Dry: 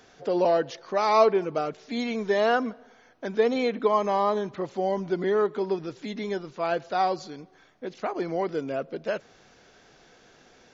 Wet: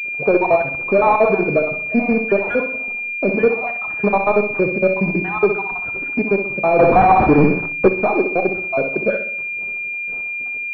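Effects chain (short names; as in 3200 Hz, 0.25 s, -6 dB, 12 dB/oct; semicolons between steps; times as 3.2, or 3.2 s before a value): random spectral dropouts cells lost 63%; in parallel at +2 dB: compressor 12:1, threshold -38 dBFS, peak gain reduction 20 dB; on the sum: sample leveller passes 2; flutter echo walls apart 10.9 m, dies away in 0.51 s; 6.79–7.88 sample leveller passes 5; on a send at -12 dB: reverb RT60 0.45 s, pre-delay 5 ms; on the sum: pulse-width modulation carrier 2400 Hz; gain +4.5 dB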